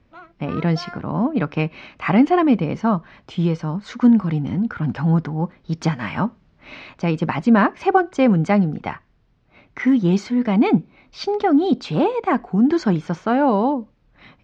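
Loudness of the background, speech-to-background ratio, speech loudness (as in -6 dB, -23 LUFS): -38.5 LUFS, 18.5 dB, -20.0 LUFS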